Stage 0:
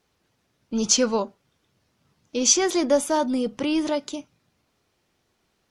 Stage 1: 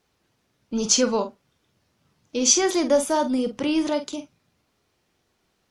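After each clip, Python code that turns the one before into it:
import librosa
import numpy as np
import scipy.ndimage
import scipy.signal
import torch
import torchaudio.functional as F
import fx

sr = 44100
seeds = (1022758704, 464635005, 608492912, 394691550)

y = fx.doubler(x, sr, ms=47.0, db=-10.5)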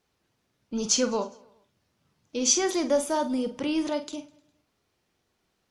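y = fx.echo_feedback(x, sr, ms=102, feedback_pct=59, wet_db=-23.5)
y = y * 10.0 ** (-4.5 / 20.0)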